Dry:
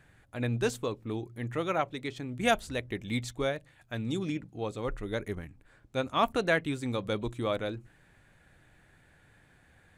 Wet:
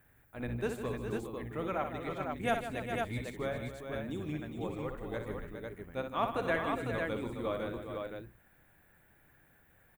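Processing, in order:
sub-octave generator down 1 octave, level −4 dB
low-shelf EQ 280 Hz −5.5 dB
multi-tap delay 60/156/279/412/501 ms −7.5/−11/−13/−8.5/−4 dB
background noise violet −65 dBFS
parametric band 5,300 Hz −13 dB 1.4 octaves
level −4.5 dB

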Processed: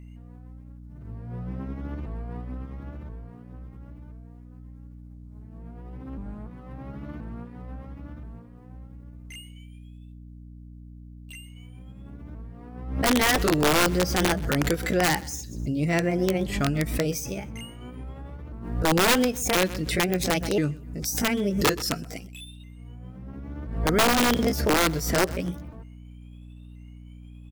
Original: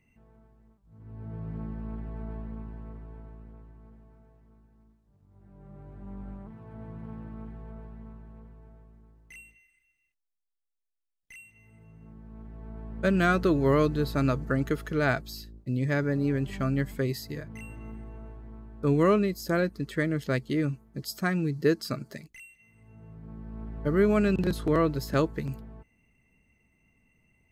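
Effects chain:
pitch shifter swept by a sawtooth +5.5 semitones, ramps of 1,029 ms
bass and treble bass −1 dB, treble +5 dB
wrap-around overflow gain 18 dB
mains hum 60 Hz, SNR 15 dB
on a send: repeating echo 127 ms, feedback 31%, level −23 dB
on the sum: background raised ahead of every attack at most 68 dB per second
level +4 dB

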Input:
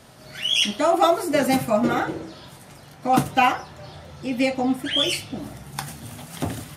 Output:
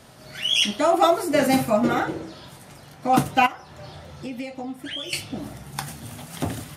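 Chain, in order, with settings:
0:01.32–0:01.74: double-tracking delay 45 ms −8.5 dB
0:03.46–0:05.13: downward compressor 8 to 1, threshold −30 dBFS, peak gain reduction 14.5 dB

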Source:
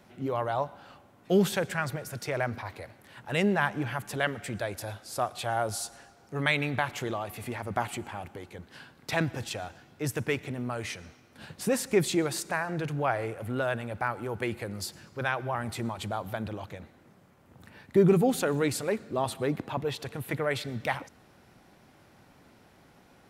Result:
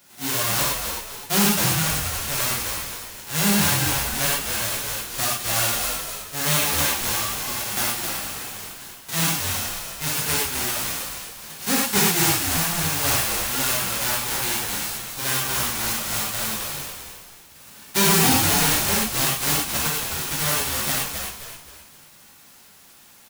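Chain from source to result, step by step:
spectral envelope flattened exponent 0.1
reverb whose tail is shaped and stops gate 140 ms flat, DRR −6 dB
gain into a clipping stage and back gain 14 dB
on a send: echo with shifted repeats 262 ms, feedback 40%, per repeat −72 Hz, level −6 dB

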